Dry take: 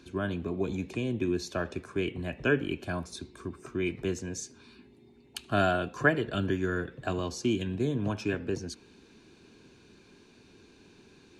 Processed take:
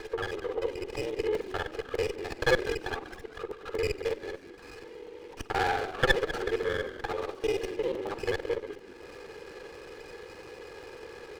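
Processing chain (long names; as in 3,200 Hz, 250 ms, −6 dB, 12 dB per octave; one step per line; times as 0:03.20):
reversed piece by piece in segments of 44 ms
spectral tilt +2 dB per octave
comb filter 2.5 ms, depth 92%
upward compression, threshold −30 dBFS
single-sideband voice off tune +76 Hz 200–3,200 Hz
echo with shifted repeats 195 ms, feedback 40%, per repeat −56 Hz, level −13.5 dB
regular buffer underruns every 0.12 s, samples 128, zero, from 0:00.87
windowed peak hold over 9 samples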